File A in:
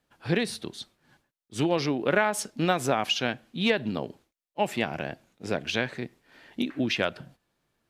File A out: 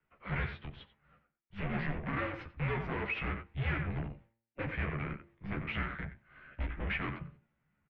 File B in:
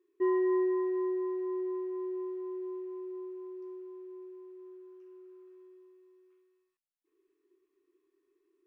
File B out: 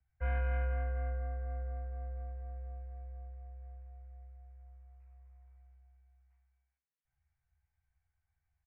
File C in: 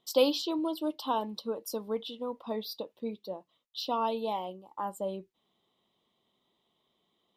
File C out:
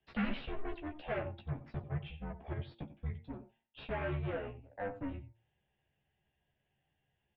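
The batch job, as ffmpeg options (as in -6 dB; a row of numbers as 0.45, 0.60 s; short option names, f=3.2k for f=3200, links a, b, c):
-filter_complex "[0:a]asubboost=boost=5:cutoff=160,afreqshift=85,asplit=2[a][b];[b]adelay=90,highpass=300,lowpass=3.4k,asoftclip=type=hard:threshold=-20dB,volume=-12dB[c];[a][c]amix=inputs=2:normalize=0,aeval=exprs='(tanh(35.5*val(0)+0.75)-tanh(0.75))/35.5':c=same,highpass=f=200:t=q:w=0.5412,highpass=f=200:t=q:w=1.307,lowpass=f=2.4k:t=q:w=0.5176,lowpass=f=2.4k:t=q:w=0.7071,lowpass=f=2.4k:t=q:w=1.932,afreqshift=-390,asplit=2[d][e];[e]adelay=14,volume=-4dB[f];[d][f]amix=inputs=2:normalize=0,bandreject=f=114.2:t=h:w=4,bandreject=f=228.4:t=h:w=4,bandreject=f=342.6:t=h:w=4,bandreject=f=456.8:t=h:w=4,bandreject=f=571:t=h:w=4,bandreject=f=685.2:t=h:w=4,bandreject=f=799.4:t=h:w=4,bandreject=f=913.6:t=h:w=4,bandreject=f=1.0278k:t=h:w=4,acrossover=split=190|1500[g][h][i];[i]crystalizer=i=9.5:c=0[j];[g][h][j]amix=inputs=3:normalize=0,volume=-1.5dB"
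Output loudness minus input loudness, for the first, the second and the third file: -9.5, -6.0, -7.5 LU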